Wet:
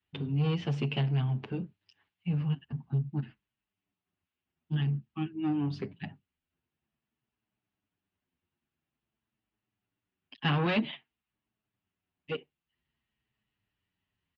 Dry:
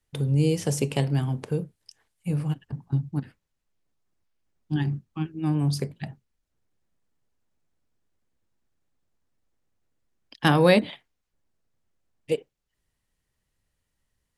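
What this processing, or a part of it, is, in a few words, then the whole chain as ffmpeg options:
barber-pole flanger into a guitar amplifier: -filter_complex "[0:a]asplit=2[link_01][link_02];[link_02]adelay=7.8,afreqshift=-0.5[link_03];[link_01][link_03]amix=inputs=2:normalize=1,asoftclip=type=tanh:threshold=-22.5dB,highpass=78,equalizer=frequency=220:width_type=q:width=4:gain=3,equalizer=frequency=520:width_type=q:width=4:gain=-10,equalizer=frequency=2800:width_type=q:width=4:gain=7,lowpass=frequency=3600:width=0.5412,lowpass=frequency=3600:width=1.3066"

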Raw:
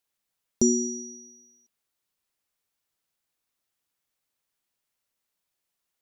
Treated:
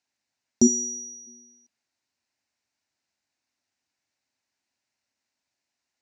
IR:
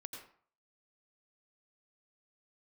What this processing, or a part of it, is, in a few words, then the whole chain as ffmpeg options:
car door speaker: -filter_complex "[0:a]asplit=3[link_01][link_02][link_03];[link_01]afade=type=out:start_time=0.66:duration=0.02[link_04];[link_02]highpass=frequency=1400:poles=1,afade=type=in:start_time=0.66:duration=0.02,afade=type=out:start_time=1.26:duration=0.02[link_05];[link_03]afade=type=in:start_time=1.26:duration=0.02[link_06];[link_04][link_05][link_06]amix=inputs=3:normalize=0,highpass=91,equalizer=frequency=170:width_type=q:width=4:gain=-10,equalizer=frequency=250:width_type=q:width=4:gain=4,equalizer=frequency=470:width_type=q:width=4:gain=-8,equalizer=frequency=1200:width_type=q:width=4:gain=-9,equalizer=frequency=3300:width_type=q:width=4:gain=-9,lowpass=frequency=6600:width=0.5412,lowpass=frequency=6600:width=1.3066,equalizer=frequency=380:width_type=o:width=0.77:gain=-2.5,volume=5dB"

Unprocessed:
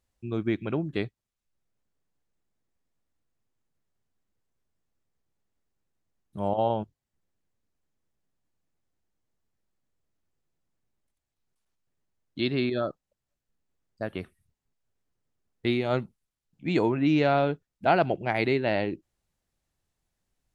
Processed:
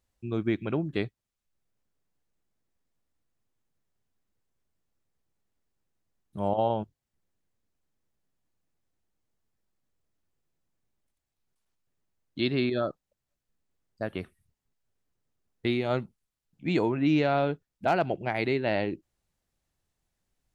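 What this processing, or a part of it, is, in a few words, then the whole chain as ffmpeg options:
clipper into limiter: -af "asoftclip=type=hard:threshold=-11.5dB,alimiter=limit=-15dB:level=0:latency=1:release=383"

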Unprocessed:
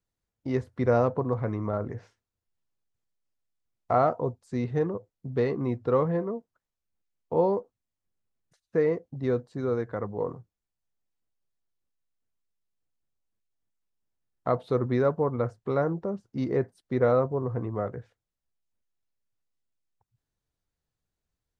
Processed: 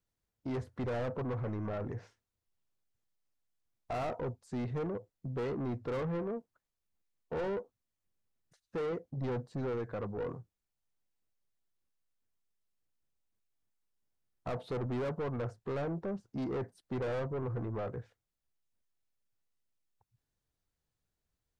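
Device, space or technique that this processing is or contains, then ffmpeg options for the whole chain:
saturation between pre-emphasis and de-emphasis: -filter_complex "[0:a]asettb=1/sr,asplit=3[link_01][link_02][link_03];[link_01]atrim=end=9.174[link_04];[link_02]atrim=start=9.17:end=9.67,asetpts=PTS-STARTPTS,afade=type=in:duration=0.004:curve=qsin,afade=type=out:start_time=0.496:duration=0.004:curve=qsin,equalizer=frequency=150:width=1:gain=6[link_05];[link_03]atrim=start=9.666[link_06];[link_04][link_05]acrossfade=duration=0.004:curve1=hsin:curve2=qsin[link_07];[link_07][link_06]acrossfade=duration=0.004:curve1=qsin:curve2=hsin,highshelf=frequency=2100:gain=10,asoftclip=type=tanh:threshold=-31dB,highshelf=frequency=2100:gain=-10,volume=-1dB"

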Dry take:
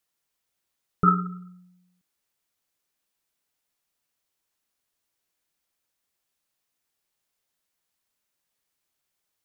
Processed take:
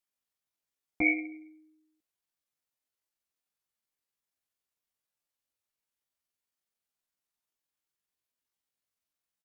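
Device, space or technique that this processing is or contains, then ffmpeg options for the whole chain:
chipmunk voice: -af "asetrate=76340,aresample=44100,atempo=0.577676,volume=-7dB"

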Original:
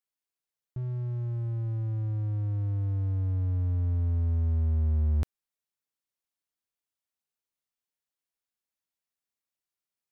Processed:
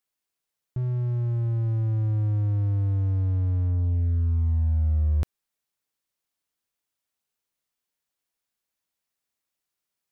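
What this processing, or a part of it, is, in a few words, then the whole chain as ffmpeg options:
clipper into limiter: -af "asoftclip=type=hard:threshold=-22dB,alimiter=level_in=0.5dB:limit=-24dB:level=0:latency=1,volume=-0.5dB,volume=6dB"

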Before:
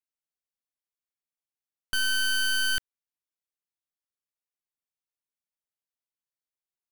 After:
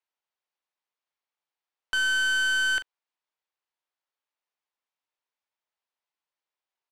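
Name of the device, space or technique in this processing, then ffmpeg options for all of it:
intercom: -filter_complex "[0:a]highpass=420,lowpass=3900,equalizer=frequency=920:width_type=o:width=0.51:gain=5,asoftclip=type=tanh:threshold=-26.5dB,asplit=2[link_01][link_02];[link_02]adelay=40,volume=-12dB[link_03];[link_01][link_03]amix=inputs=2:normalize=0,volume=6.5dB"

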